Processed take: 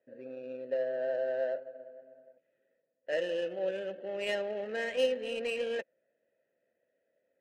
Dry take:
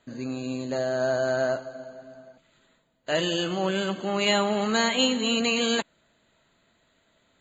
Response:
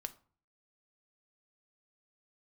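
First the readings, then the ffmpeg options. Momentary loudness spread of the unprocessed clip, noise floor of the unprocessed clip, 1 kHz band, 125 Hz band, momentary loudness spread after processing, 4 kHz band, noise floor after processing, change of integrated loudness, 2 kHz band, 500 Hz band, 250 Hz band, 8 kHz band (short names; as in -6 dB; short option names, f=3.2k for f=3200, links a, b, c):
12 LU, -67 dBFS, -16.5 dB, under -20 dB, 17 LU, -16.5 dB, -81 dBFS, -9.0 dB, -10.0 dB, -5.0 dB, -18.5 dB, n/a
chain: -filter_complex "[0:a]asplit=3[a][b][c];[a]bandpass=f=530:t=q:w=8,volume=0dB[d];[b]bandpass=f=1.84k:t=q:w=8,volume=-6dB[e];[c]bandpass=f=2.48k:t=q:w=8,volume=-9dB[f];[d][e][f]amix=inputs=3:normalize=0,adynamicsmooth=sensitivity=6:basefreq=1.4k,volume=2.5dB"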